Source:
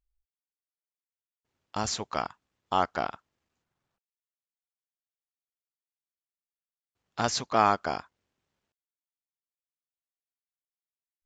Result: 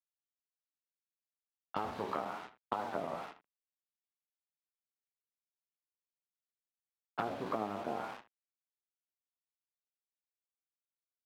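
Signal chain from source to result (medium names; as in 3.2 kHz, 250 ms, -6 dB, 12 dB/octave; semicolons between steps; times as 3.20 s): spectral sustain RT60 0.51 s; flange 0.38 Hz, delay 8.5 ms, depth 5.3 ms, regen +20%; low-pass that closes with the level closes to 600 Hz, closed at -26.5 dBFS; compression 8:1, threshold -41 dBFS, peak gain reduction 16.5 dB; bit crusher 9-bit; three-band isolator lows -14 dB, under 150 Hz, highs -15 dB, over 3.6 kHz; on a send: delay 80 ms -13.5 dB; on the sum: level-controlled noise filter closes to 540 Hz, open at -46 dBFS; warped record 33 1/3 rpm, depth 250 cents; trim +8 dB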